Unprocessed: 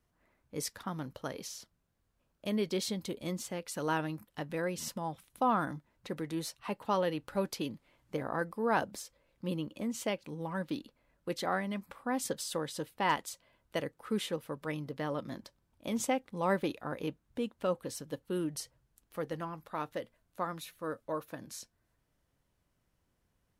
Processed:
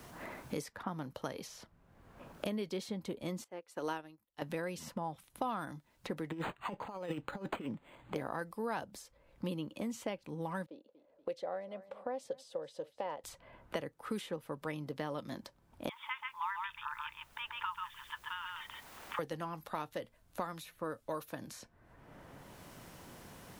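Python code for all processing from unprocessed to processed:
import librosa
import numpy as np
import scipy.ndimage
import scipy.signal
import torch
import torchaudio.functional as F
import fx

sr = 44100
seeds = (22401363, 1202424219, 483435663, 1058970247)

y = fx.chain(x, sr, fx.low_shelf_res(hz=250.0, db=-7.0, q=1.5),
    fx.upward_expand(threshold_db=-45.0, expansion=2.5), at=(3.44, 4.42))
y = fx.chain(y, sr, fx.over_compress(threshold_db=-38.0, ratio=-0.5),
    fx.resample_linear(factor=8), at=(6.3, 8.16))
y = fx.chain(y, sr, fx.bandpass_q(hz=550.0, q=4.7),
    fx.echo_feedback(ms=238, feedback_pct=24, wet_db=-22), at=(10.66, 13.24))
y = fx.chain(y, sr, fx.brickwall_bandpass(low_hz=850.0, high_hz=3700.0),
    fx.quant_dither(seeds[0], bits=12, dither='triangular'),
    fx.echo_single(ms=136, db=-4.0), at=(15.89, 19.19))
y = fx.peak_eq(y, sr, hz=830.0, db=3.0, octaves=0.77)
y = fx.band_squash(y, sr, depth_pct=100)
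y = y * 10.0 ** (-3.5 / 20.0)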